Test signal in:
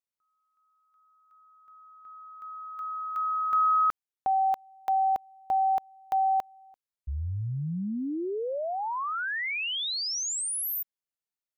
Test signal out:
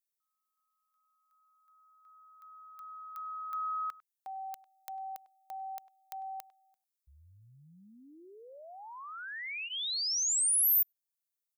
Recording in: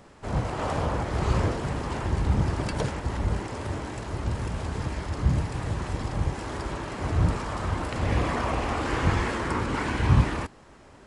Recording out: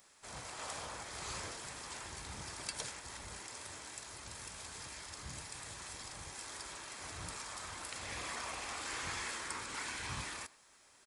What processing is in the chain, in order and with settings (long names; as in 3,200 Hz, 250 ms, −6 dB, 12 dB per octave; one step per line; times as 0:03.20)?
first-order pre-emphasis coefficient 0.97
notch filter 2,900 Hz, Q 15
far-end echo of a speakerphone 100 ms, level −20 dB
level +2 dB